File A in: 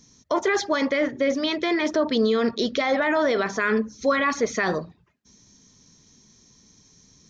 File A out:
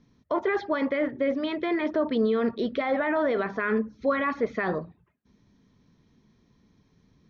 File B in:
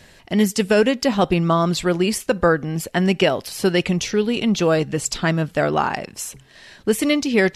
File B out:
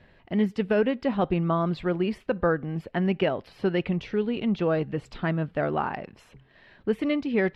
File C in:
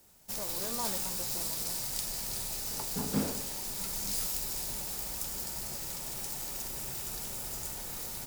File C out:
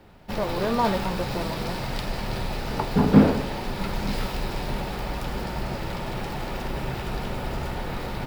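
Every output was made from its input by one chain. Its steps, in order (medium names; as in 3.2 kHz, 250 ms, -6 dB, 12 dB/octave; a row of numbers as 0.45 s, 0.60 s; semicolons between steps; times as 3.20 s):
distance through air 410 m; normalise loudness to -27 LUFS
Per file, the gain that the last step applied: -2.0 dB, -6.0 dB, +17.5 dB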